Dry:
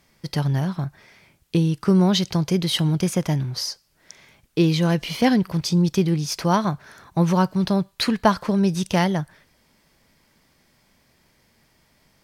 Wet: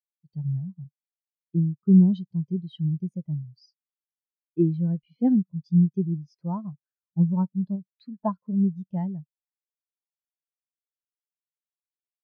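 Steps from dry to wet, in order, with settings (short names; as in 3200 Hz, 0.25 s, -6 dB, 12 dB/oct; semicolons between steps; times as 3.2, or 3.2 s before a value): 7.75–8.16 compressor 2:1, threshold -24 dBFS, peak gain reduction 4.5 dB; spectral expander 2.5:1; gain -4.5 dB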